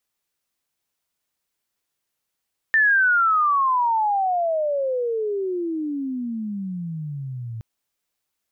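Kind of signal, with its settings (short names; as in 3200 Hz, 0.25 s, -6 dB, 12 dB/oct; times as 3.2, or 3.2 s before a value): chirp logarithmic 1800 Hz -> 110 Hz -13.5 dBFS -> -29 dBFS 4.87 s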